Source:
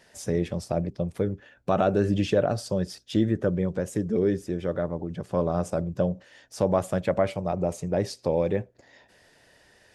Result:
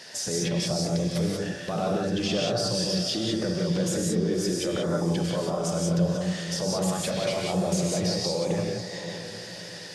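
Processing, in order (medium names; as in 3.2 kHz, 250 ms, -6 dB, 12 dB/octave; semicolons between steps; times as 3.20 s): Bessel high-pass 170 Hz; peaking EQ 4.9 kHz +11.5 dB 1.1 oct; peak limiter -31.5 dBFS, peak gain reduction 20 dB; on a send: echo that smears into a reverb 590 ms, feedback 43%, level -10.5 dB; on the sum: gated-style reverb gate 210 ms rising, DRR -1 dB; trim +9 dB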